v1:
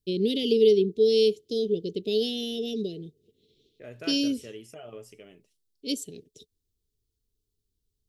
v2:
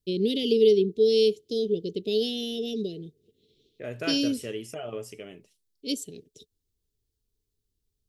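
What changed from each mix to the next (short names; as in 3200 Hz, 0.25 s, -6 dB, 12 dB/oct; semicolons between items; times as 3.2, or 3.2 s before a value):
second voice +7.5 dB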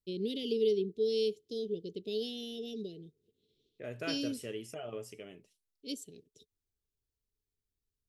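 first voice -10.0 dB; second voice -6.0 dB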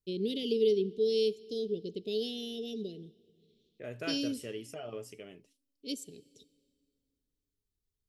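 reverb: on, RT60 2.2 s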